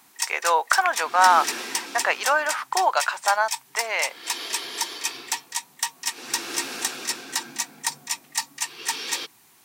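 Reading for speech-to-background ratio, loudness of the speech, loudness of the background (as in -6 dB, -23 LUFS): 6.0 dB, -22.5 LUFS, -28.5 LUFS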